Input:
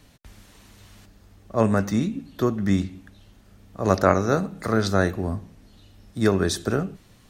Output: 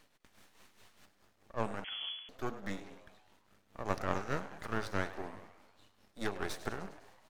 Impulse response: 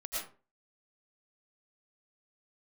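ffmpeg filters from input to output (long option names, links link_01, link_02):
-filter_complex "[0:a]tremolo=f=4.8:d=0.69,acompressor=threshold=-25dB:ratio=2,highpass=frequency=860:poles=1,asplit=2[link_01][link_02];[link_02]asplit=7[link_03][link_04][link_05][link_06][link_07][link_08][link_09];[link_03]adelay=101,afreqshift=110,volume=-14.5dB[link_10];[link_04]adelay=202,afreqshift=220,volume=-18.5dB[link_11];[link_05]adelay=303,afreqshift=330,volume=-22.5dB[link_12];[link_06]adelay=404,afreqshift=440,volume=-26.5dB[link_13];[link_07]adelay=505,afreqshift=550,volume=-30.6dB[link_14];[link_08]adelay=606,afreqshift=660,volume=-34.6dB[link_15];[link_09]adelay=707,afreqshift=770,volume=-38.6dB[link_16];[link_10][link_11][link_12][link_13][link_14][link_15][link_16]amix=inputs=7:normalize=0[link_17];[link_01][link_17]amix=inputs=2:normalize=0,aeval=exprs='max(val(0),0)':channel_layout=same,highshelf=frequency=2600:gain=-8.5,asettb=1/sr,asplit=3[link_18][link_19][link_20];[link_18]atrim=end=1.844[link_21];[link_19]atrim=start=1.84:end=2.29,asetpts=PTS-STARTPTS,afade=type=in:duration=0.004:curve=qsin,afade=type=out:start_time=0.446:duration=0.004:curve=qsin,lowpass=frequency=2900:width_type=q:width=0.5098,lowpass=frequency=2900:width_type=q:width=0.6013,lowpass=frequency=2900:width_type=q:width=0.9,lowpass=frequency=2900:width_type=q:width=2.563,afreqshift=-3400[link_22];[link_20]atrim=start=2.286[link_23];[link_21][link_22]acrossfade=duration=0.004:curve1=hsin:curve2=qsin[link_24];[link_24][link_23]acrossfade=duration=0.004:curve1=qsin:curve2=hsin,volume=2.5dB"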